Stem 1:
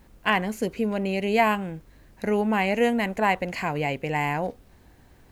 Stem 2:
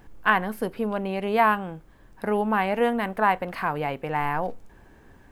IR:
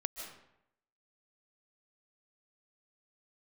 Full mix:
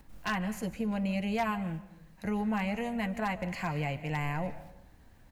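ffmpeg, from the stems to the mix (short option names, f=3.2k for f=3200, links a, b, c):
-filter_complex "[0:a]acrossover=split=140[a][b];[b]acompressor=threshold=-35dB:ratio=4[c];[a][c]amix=inputs=2:normalize=0,equalizer=f=400:t=o:w=0.44:g=-11.5,volume=-1dB,asplit=2[d][e];[e]volume=-5.5dB[f];[1:a]lowshelf=f=180:g=11.5,adelay=8.7,volume=-17.5dB,asplit=2[g][h];[h]apad=whole_len=234578[i];[d][i]sidechaingate=range=-33dB:threshold=-48dB:ratio=16:detection=peak[j];[2:a]atrim=start_sample=2205[k];[f][k]afir=irnorm=-1:irlink=0[l];[j][g][l]amix=inputs=3:normalize=0,aeval=exprs='0.0841*(abs(mod(val(0)/0.0841+3,4)-2)-1)':c=same"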